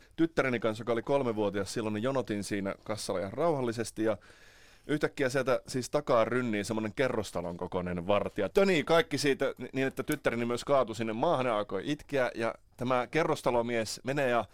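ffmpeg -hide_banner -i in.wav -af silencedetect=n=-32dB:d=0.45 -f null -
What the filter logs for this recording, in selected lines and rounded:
silence_start: 4.14
silence_end: 4.89 | silence_duration: 0.75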